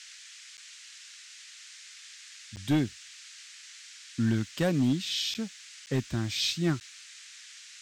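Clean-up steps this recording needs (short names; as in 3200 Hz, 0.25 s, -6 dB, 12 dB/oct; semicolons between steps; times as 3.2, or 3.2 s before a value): clip repair -19.5 dBFS; interpolate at 0.57/2.56/5.34/5.86/6.8, 9.4 ms; noise print and reduce 25 dB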